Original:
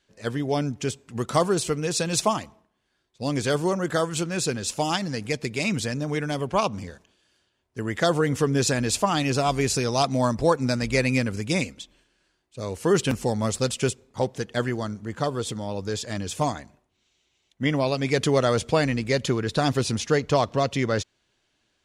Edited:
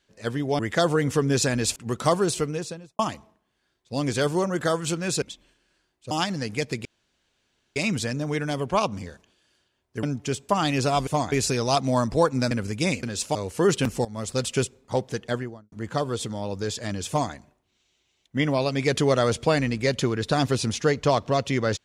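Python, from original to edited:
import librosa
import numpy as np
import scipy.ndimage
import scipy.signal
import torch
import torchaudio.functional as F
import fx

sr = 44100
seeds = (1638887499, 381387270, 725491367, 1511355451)

y = fx.studio_fade_out(x, sr, start_s=1.65, length_s=0.63)
y = fx.studio_fade_out(y, sr, start_s=14.46, length_s=0.52)
y = fx.edit(y, sr, fx.swap(start_s=0.59, length_s=0.46, other_s=7.84, other_length_s=1.17),
    fx.swap(start_s=4.51, length_s=0.32, other_s=11.72, other_length_s=0.89),
    fx.insert_room_tone(at_s=5.57, length_s=0.91),
    fx.cut(start_s=10.78, length_s=0.42),
    fx.fade_in_from(start_s=13.31, length_s=0.41, floor_db=-17.5),
    fx.duplicate(start_s=16.34, length_s=0.25, to_s=9.59), tone=tone)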